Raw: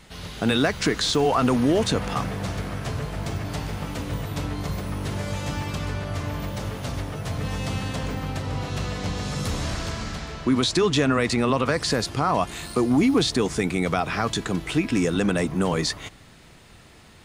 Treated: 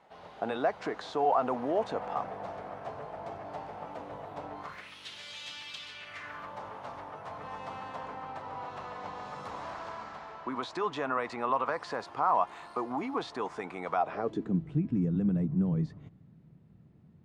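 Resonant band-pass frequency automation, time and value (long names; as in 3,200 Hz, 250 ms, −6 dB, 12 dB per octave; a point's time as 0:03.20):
resonant band-pass, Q 2.4
0:04.55 750 Hz
0:04.95 3,400 Hz
0:05.91 3,400 Hz
0:06.56 930 Hz
0:13.95 930 Hz
0:14.64 160 Hz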